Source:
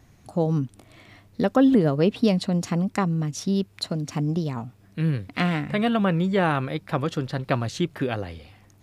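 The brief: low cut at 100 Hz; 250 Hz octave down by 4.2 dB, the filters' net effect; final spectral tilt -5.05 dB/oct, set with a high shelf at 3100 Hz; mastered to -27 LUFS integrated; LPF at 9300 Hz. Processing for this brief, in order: HPF 100 Hz; LPF 9300 Hz; bell 250 Hz -5.5 dB; high shelf 3100 Hz +8.5 dB; gain -1 dB

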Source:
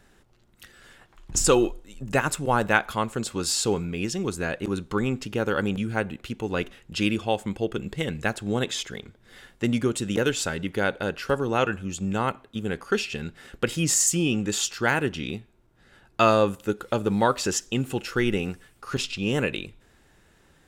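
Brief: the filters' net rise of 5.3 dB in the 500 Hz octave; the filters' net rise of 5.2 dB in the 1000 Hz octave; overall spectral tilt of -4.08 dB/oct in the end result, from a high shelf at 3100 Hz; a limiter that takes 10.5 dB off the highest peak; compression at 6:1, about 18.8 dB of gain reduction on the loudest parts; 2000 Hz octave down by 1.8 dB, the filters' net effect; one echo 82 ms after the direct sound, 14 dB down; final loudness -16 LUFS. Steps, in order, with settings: bell 500 Hz +5 dB; bell 1000 Hz +7 dB; bell 2000 Hz -8.5 dB; high shelf 3100 Hz +5.5 dB; compressor 6:1, threshold -31 dBFS; limiter -25 dBFS; echo 82 ms -14 dB; gain +20.5 dB

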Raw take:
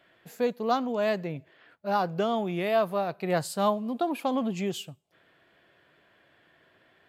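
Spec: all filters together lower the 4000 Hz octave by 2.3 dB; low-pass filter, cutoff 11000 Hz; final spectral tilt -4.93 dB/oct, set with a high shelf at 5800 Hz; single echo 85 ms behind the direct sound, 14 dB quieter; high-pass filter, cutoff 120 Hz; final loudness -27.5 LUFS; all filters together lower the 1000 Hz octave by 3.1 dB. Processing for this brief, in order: HPF 120 Hz; LPF 11000 Hz; bell 1000 Hz -4.5 dB; bell 4000 Hz -5 dB; high shelf 5800 Hz +6.5 dB; echo 85 ms -14 dB; gain +2.5 dB

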